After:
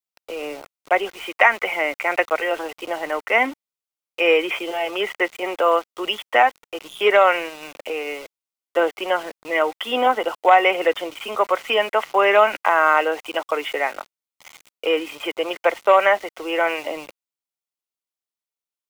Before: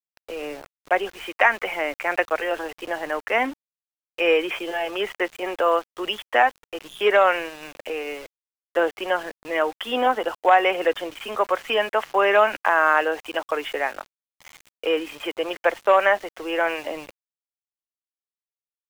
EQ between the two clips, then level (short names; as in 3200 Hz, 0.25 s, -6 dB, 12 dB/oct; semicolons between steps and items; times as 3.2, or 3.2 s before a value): notch 1700 Hz, Q 5.8; dynamic EQ 2000 Hz, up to +5 dB, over -43 dBFS, Q 5.7; low shelf 150 Hz -9.5 dB; +3.0 dB